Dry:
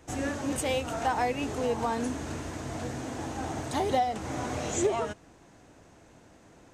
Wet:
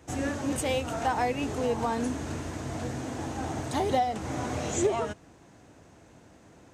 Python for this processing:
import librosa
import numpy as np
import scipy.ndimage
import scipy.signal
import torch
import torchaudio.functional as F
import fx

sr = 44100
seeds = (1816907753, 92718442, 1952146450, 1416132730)

y = scipy.signal.sosfilt(scipy.signal.butter(2, 55.0, 'highpass', fs=sr, output='sos'), x)
y = fx.low_shelf(y, sr, hz=230.0, db=3.5)